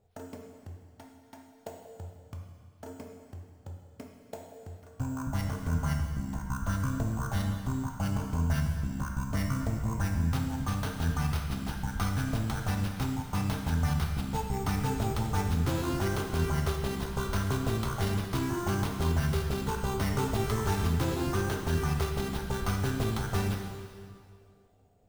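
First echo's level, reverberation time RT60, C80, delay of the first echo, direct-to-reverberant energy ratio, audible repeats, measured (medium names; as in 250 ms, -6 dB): no echo, 2.0 s, 5.5 dB, no echo, 1.5 dB, no echo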